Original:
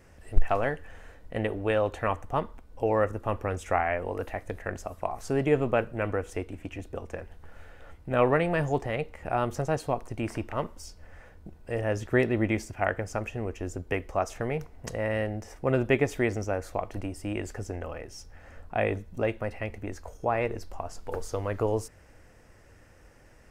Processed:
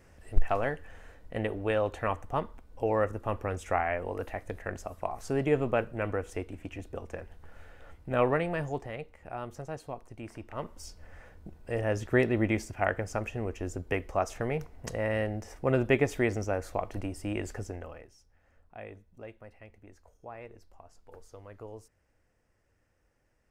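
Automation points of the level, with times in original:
0:08.19 −2.5 dB
0:09.24 −11 dB
0:10.38 −11 dB
0:10.85 −1 dB
0:17.57 −1 dB
0:18.02 −9.5 dB
0:18.18 −17.5 dB

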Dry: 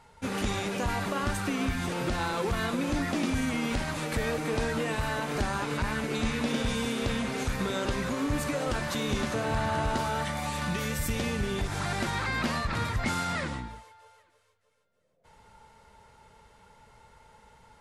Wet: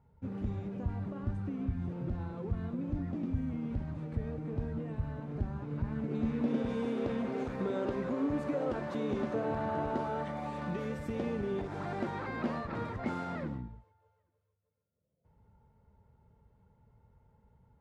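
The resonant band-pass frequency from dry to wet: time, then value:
resonant band-pass, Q 0.86
0:05.63 100 Hz
0:06.78 380 Hz
0:13.31 380 Hz
0:13.74 100 Hz

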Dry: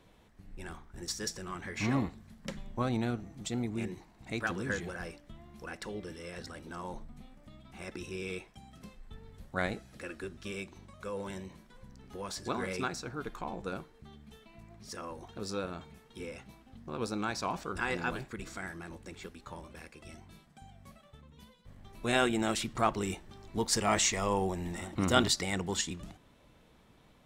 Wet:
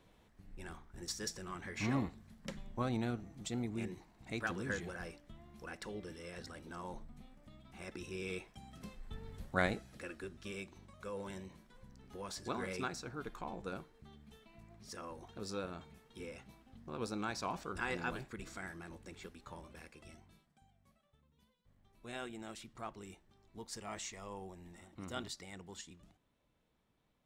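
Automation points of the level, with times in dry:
0:08.03 −4.5 dB
0:09.33 +3 dB
0:10.17 −5 dB
0:20.00 −5 dB
0:20.74 −17 dB

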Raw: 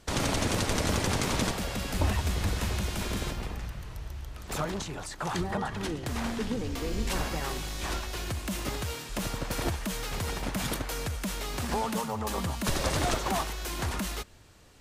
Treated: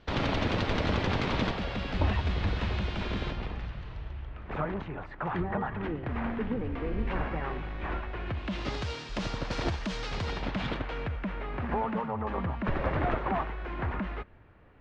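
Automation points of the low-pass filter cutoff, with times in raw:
low-pass filter 24 dB per octave
0:03.90 3,800 Hz
0:04.53 2,300 Hz
0:08.19 2,300 Hz
0:08.75 5,100 Hz
0:10.13 5,100 Hz
0:11.37 2,200 Hz

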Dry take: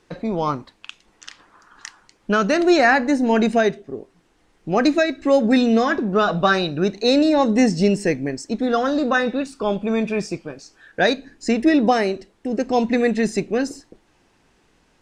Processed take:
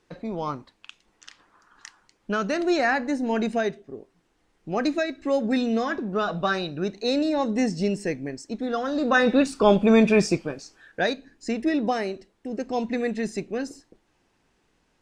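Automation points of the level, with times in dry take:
0:08.87 −7.5 dB
0:09.38 +4.5 dB
0:10.32 +4.5 dB
0:11.14 −8 dB

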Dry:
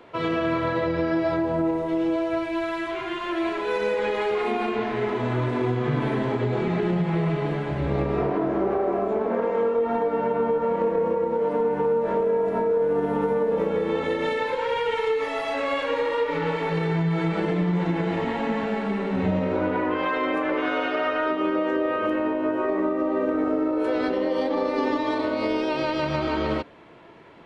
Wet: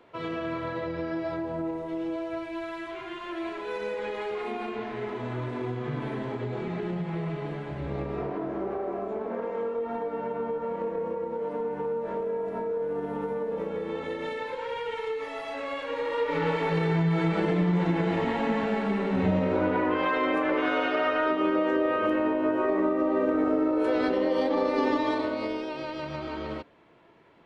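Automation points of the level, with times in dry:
0:15.85 −8 dB
0:16.40 −1 dB
0:25.05 −1 dB
0:25.73 −9.5 dB

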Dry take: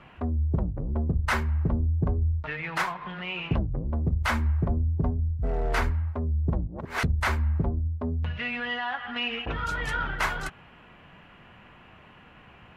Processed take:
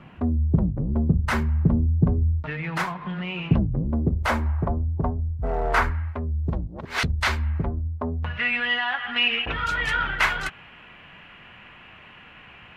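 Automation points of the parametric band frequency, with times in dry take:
parametric band +9.5 dB 1.8 octaves
0:03.82 180 Hz
0:04.62 950 Hz
0:05.68 950 Hz
0:06.42 3,900 Hz
0:07.36 3,900 Hz
0:08.14 800 Hz
0:08.60 2,500 Hz

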